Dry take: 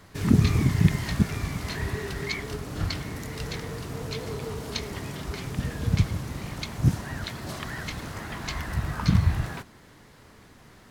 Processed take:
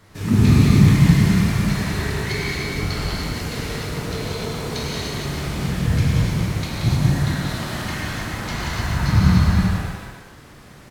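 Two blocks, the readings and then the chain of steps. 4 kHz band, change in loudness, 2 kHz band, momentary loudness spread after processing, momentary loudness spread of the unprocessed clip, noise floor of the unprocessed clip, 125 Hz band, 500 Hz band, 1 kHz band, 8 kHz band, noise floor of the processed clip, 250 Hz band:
+8.0 dB, +8.5 dB, +8.0 dB, 13 LU, 12 LU, -52 dBFS, +8.5 dB, +6.5 dB, +8.0 dB, +8.0 dB, -44 dBFS, +9.0 dB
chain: bouncing-ball echo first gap 180 ms, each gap 0.65×, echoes 5; gated-style reverb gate 330 ms flat, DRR -7 dB; trim -2 dB

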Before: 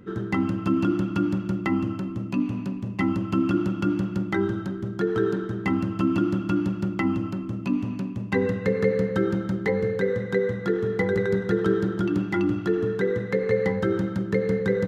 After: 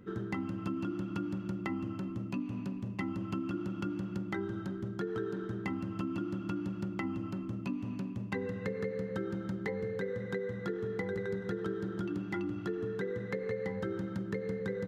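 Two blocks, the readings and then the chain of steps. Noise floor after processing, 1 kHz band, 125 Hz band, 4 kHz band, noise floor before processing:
-42 dBFS, -11.0 dB, -11.0 dB, -10.0 dB, -34 dBFS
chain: compression, threshold -26 dBFS, peak gain reduction 9.5 dB; trim -6.5 dB

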